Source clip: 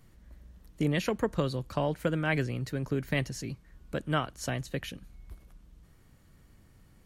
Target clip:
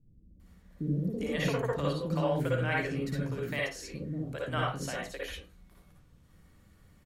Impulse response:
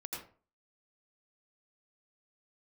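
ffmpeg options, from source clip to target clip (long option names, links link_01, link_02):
-filter_complex "[0:a]acrossover=split=380[link_01][link_02];[link_02]adelay=400[link_03];[link_01][link_03]amix=inputs=2:normalize=0[link_04];[1:a]atrim=start_sample=2205,asetrate=66150,aresample=44100[link_05];[link_04][link_05]afir=irnorm=-1:irlink=0,volume=4.5dB"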